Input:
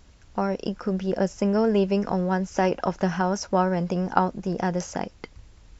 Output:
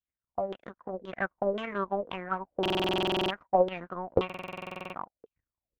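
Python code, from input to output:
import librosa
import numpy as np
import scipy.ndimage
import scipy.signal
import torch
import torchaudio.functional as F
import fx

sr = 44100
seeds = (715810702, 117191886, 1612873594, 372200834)

y = fx.tracing_dist(x, sr, depth_ms=0.43)
y = fx.notch_comb(y, sr, f0_hz=430.0)
y = fx.formant_shift(y, sr, semitones=4)
y = fx.power_curve(y, sr, exponent=2.0)
y = fx.filter_lfo_lowpass(y, sr, shape='saw_down', hz=1.9, low_hz=410.0, high_hz=3300.0, q=7.8)
y = fx.buffer_glitch(y, sr, at_s=(2.61, 4.25), block=2048, repeats=14)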